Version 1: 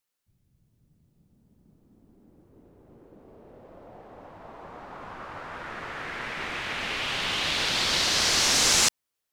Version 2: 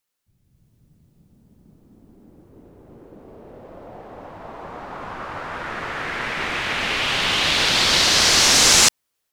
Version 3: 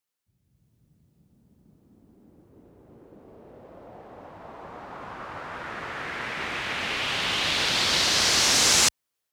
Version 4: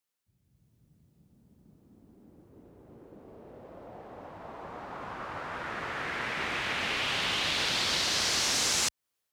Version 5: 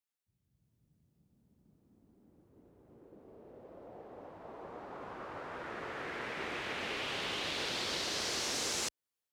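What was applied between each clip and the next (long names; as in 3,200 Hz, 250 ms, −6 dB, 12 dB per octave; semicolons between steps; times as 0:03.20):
automatic gain control gain up to 5 dB; level +3 dB
high-pass filter 49 Hz; level −6 dB
downward compressor 3 to 1, threshold −26 dBFS, peak gain reduction 8 dB; level −1 dB
dynamic equaliser 410 Hz, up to +8 dB, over −54 dBFS, Q 0.99; level −8.5 dB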